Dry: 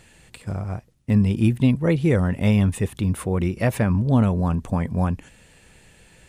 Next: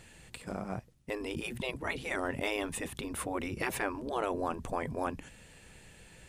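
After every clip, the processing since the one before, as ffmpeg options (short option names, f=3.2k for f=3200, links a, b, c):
-af "afftfilt=real='re*lt(hypot(re,im),0.282)':imag='im*lt(hypot(re,im),0.282)':win_size=1024:overlap=0.75,volume=-3dB"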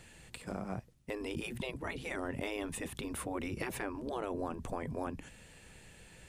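-filter_complex "[0:a]acrossover=split=390[a][b];[b]acompressor=threshold=-38dB:ratio=3[c];[a][c]amix=inputs=2:normalize=0,volume=-1dB"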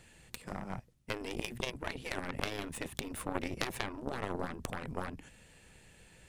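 -af "aeval=exprs='0.0841*(cos(1*acos(clip(val(0)/0.0841,-1,1)))-cos(1*PI/2))+0.0266*(cos(3*acos(clip(val(0)/0.0841,-1,1)))-cos(3*PI/2))+0.0299*(cos(4*acos(clip(val(0)/0.0841,-1,1)))-cos(4*PI/2))+0.00266*(cos(5*acos(clip(val(0)/0.0841,-1,1)))-cos(5*PI/2))+0.0119*(cos(6*acos(clip(val(0)/0.0841,-1,1)))-cos(6*PI/2))':c=same,volume=10.5dB"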